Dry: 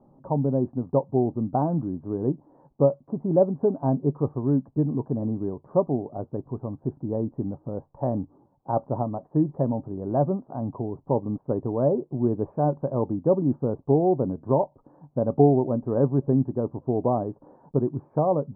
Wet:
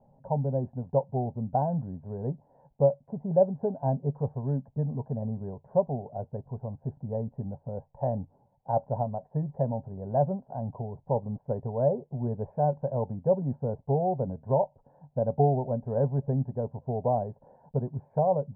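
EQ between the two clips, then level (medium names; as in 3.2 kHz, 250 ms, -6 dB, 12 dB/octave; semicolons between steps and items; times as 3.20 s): distance through air 160 m; static phaser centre 1.2 kHz, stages 6; 0.0 dB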